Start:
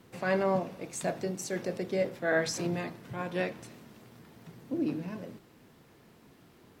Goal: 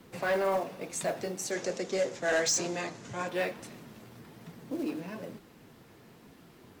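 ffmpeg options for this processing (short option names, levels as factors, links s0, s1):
-filter_complex "[0:a]acrossover=split=330|5100[s0][s1][s2];[s0]acompressor=threshold=0.00501:ratio=6[s3];[s1]acrusher=bits=5:mode=log:mix=0:aa=0.000001[s4];[s3][s4][s2]amix=inputs=3:normalize=0,asettb=1/sr,asplit=3[s5][s6][s7];[s5]atrim=end=1.514[s8];[s6]atrim=start=1.51:end=3.28,asetpts=PTS-STARTPTS,afade=t=in:d=0.004:c=qsin,afade=t=out:st=1.766:d=0.004:c=qsin,lowpass=f=6800:t=q:w=4.5[s9];[s7]atrim=start=3.276[s10];[s8][s9]acrossfade=d=0.004:c1=hsin:c2=qsin[s11];[s11][s10]acrossfade=d=0.004:c1=qsin:c2=hsin,flanger=delay=3.4:depth=7.6:regen=-47:speed=1.1:shape=triangular,asoftclip=type=tanh:threshold=0.0376,volume=2.24"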